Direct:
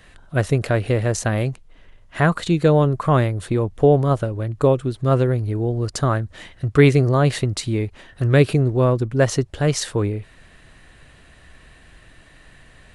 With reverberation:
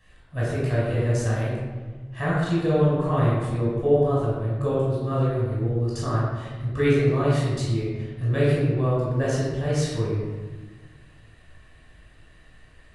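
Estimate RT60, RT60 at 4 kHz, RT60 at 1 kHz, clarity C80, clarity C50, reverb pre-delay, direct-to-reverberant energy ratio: 1.4 s, 0.80 s, 1.3 s, 1.0 dB, -1.5 dB, 16 ms, -7.5 dB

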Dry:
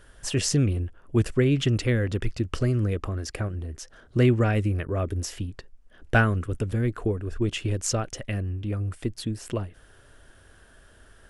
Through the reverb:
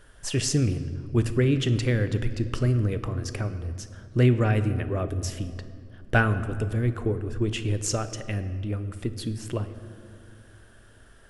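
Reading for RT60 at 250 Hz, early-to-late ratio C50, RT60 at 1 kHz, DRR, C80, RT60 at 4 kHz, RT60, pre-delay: 3.5 s, 12.0 dB, 2.1 s, 10.0 dB, 13.0 dB, 1.4 s, 2.4 s, 7 ms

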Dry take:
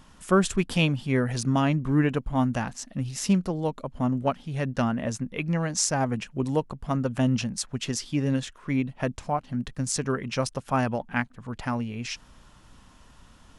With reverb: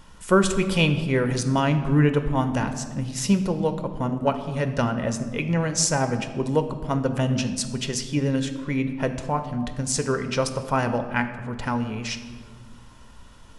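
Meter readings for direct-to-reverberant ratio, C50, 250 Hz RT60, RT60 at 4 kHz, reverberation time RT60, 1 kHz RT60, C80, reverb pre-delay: 8.0 dB, 10.5 dB, 2.2 s, 1.0 s, 1.7 s, 1.5 s, 12.0 dB, 4 ms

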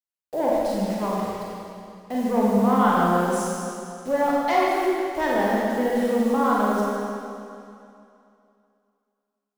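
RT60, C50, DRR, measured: 2.6 s, -3.5 dB, -6.0 dB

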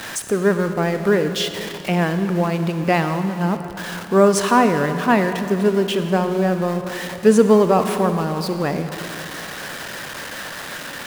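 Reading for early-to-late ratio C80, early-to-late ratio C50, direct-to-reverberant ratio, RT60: 9.0 dB, 8.5 dB, 8.0 dB, 3.0 s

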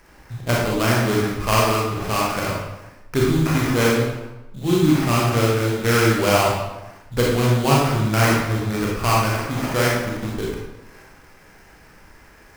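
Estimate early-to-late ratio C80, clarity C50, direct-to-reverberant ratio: 3.0 dB, -0.5 dB, -4.5 dB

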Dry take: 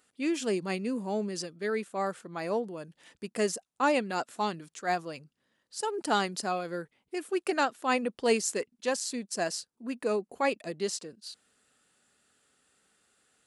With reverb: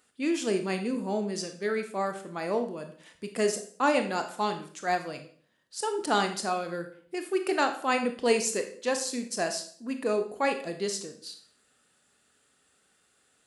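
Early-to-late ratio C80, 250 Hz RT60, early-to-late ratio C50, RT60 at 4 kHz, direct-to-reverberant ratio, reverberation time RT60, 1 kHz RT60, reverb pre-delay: 14.0 dB, 0.60 s, 10.0 dB, 0.45 s, 6.5 dB, 0.50 s, 0.45 s, 22 ms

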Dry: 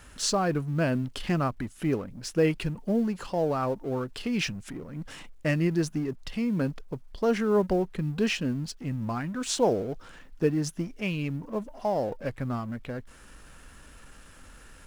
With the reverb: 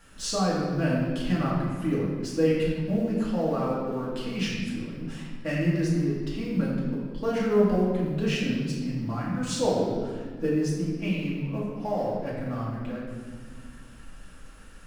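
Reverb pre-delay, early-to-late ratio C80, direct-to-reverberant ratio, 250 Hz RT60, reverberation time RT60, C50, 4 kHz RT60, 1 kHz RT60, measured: 3 ms, 2.0 dB, -7.5 dB, 2.8 s, 1.8 s, 0.0 dB, 1.2 s, 1.5 s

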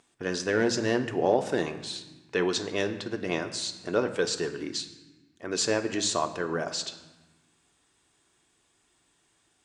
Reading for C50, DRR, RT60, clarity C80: 11.5 dB, 6.0 dB, 1.2 s, 13.0 dB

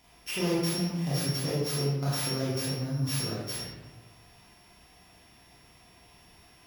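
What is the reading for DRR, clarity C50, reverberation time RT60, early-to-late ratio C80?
-7.5 dB, -1.5 dB, 1.2 s, 2.0 dB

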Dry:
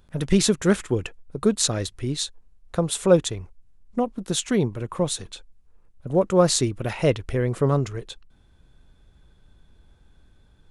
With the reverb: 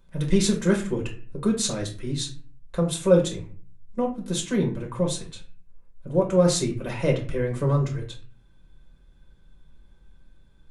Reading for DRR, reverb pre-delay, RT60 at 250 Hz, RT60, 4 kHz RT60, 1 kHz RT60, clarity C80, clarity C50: -0.5 dB, 5 ms, 0.60 s, 0.45 s, 0.30 s, 0.40 s, 14.5 dB, 9.5 dB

